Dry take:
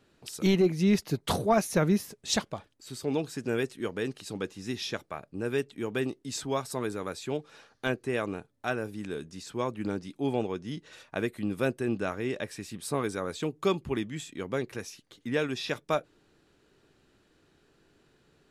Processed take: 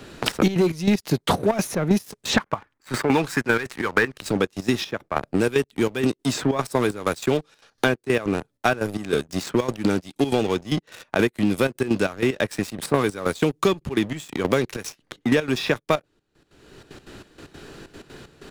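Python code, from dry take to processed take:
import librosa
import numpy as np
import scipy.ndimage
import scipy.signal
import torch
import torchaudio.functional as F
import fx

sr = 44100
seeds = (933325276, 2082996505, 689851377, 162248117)

y = fx.band_shelf(x, sr, hz=1400.0, db=11.5, octaves=1.7, at=(2.37, 4.17))
y = fx.leveller(y, sr, passes=3)
y = fx.step_gate(y, sr, bpm=189, pattern='xxxx.x.xx..x.', floor_db=-12.0, edge_ms=4.5)
y = fx.band_squash(y, sr, depth_pct=100)
y = y * librosa.db_to_amplitude(-1.0)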